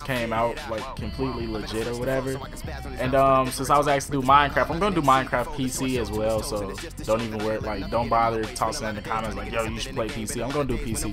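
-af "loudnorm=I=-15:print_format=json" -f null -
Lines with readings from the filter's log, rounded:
"input_i" : "-25.3",
"input_tp" : "-4.3",
"input_lra" : "5.5",
"input_thresh" : "-35.4",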